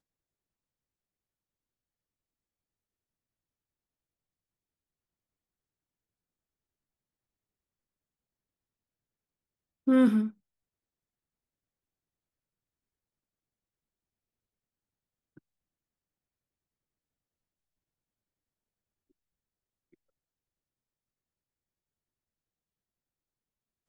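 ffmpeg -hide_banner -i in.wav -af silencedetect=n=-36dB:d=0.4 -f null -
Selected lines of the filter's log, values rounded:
silence_start: 0.00
silence_end: 9.87 | silence_duration: 9.87
silence_start: 10.28
silence_end: 23.88 | silence_duration: 13.60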